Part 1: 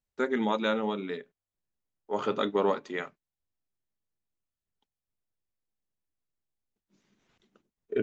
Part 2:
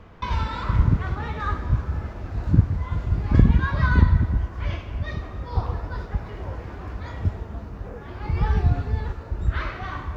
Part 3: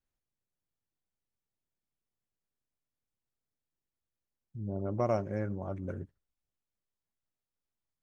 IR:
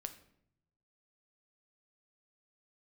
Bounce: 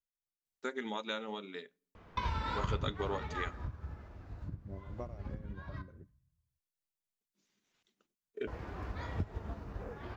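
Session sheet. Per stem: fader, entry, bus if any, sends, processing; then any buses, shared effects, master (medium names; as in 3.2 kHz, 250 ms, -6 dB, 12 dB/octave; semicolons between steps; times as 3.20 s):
-5.5 dB, 0.45 s, bus A, send -21.5 dB, treble shelf 2.4 kHz +11 dB
-3.0 dB, 1.95 s, muted 5.82–8.47 s, bus A, send -8.5 dB, compression 12:1, threshold -23 dBFS, peak gain reduction 15.5 dB; auto duck -20 dB, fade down 1.85 s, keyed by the third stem
-4.5 dB, 0.00 s, no bus, no send, compression 4:1, threshold -30 dBFS, peak gain reduction 6 dB; tremolo 3.8 Hz, depth 75%
bus A: 0.0 dB, bass shelf 150 Hz -6 dB; compression 3:1, threshold -33 dBFS, peak gain reduction 6.5 dB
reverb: on, RT60 0.70 s, pre-delay 7 ms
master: upward expansion 1.5:1, over -42 dBFS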